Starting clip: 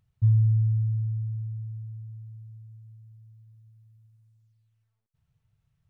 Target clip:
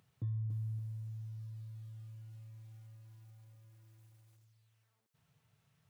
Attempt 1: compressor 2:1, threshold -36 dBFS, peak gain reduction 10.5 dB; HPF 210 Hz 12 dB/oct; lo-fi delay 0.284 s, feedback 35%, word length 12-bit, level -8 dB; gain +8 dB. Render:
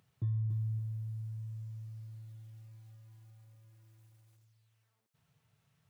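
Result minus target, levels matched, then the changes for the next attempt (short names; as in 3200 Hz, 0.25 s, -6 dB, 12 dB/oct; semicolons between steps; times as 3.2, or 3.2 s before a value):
compressor: peak gain reduction -4 dB
change: compressor 2:1, threshold -44 dBFS, peak gain reduction 14.5 dB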